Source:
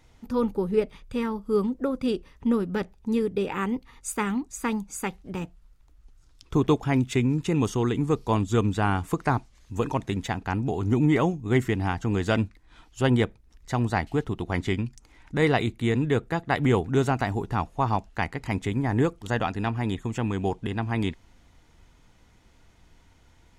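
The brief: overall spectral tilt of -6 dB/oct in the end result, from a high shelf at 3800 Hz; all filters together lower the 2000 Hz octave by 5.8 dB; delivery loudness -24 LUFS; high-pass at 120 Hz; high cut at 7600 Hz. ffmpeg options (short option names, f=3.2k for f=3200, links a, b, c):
-af "highpass=120,lowpass=7.6k,equalizer=f=2k:t=o:g=-6.5,highshelf=f=3.8k:g=-3.5,volume=4dB"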